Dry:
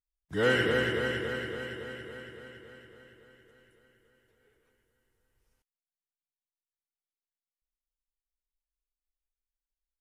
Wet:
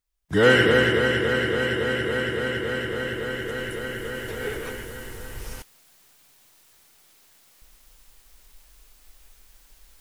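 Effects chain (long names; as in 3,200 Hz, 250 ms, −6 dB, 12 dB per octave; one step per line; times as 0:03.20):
camcorder AGC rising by 8.8 dB per second
level +9 dB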